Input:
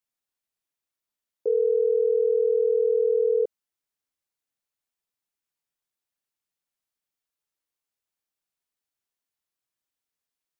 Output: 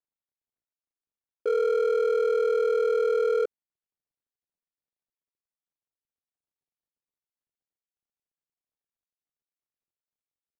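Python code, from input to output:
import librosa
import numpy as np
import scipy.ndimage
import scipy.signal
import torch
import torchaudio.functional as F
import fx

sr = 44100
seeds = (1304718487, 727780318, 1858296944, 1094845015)

y = scipy.signal.medfilt(x, 41)
y = np.clip(10.0 ** (21.5 / 20.0) * y, -1.0, 1.0) / 10.0 ** (21.5 / 20.0)
y = y * 10.0 ** (1.0 / 20.0)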